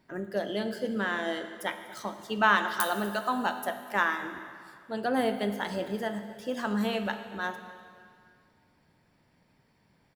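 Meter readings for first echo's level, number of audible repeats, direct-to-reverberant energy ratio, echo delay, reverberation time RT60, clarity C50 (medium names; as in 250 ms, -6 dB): -20.5 dB, 1, 8.0 dB, 245 ms, 2.2 s, 9.0 dB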